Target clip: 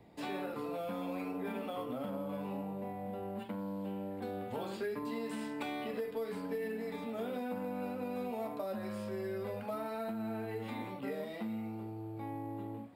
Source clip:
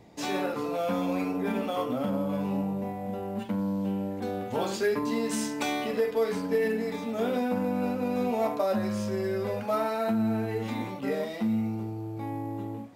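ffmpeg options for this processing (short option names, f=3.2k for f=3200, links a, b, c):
-filter_complex "[0:a]equalizer=f=6.1k:w=2.8:g=-15,acrossover=split=310|4100[a][b][c];[a]acompressor=threshold=-38dB:ratio=4[d];[b]acompressor=threshold=-33dB:ratio=4[e];[c]acompressor=threshold=-53dB:ratio=4[f];[d][e][f]amix=inputs=3:normalize=0,volume=-5.5dB"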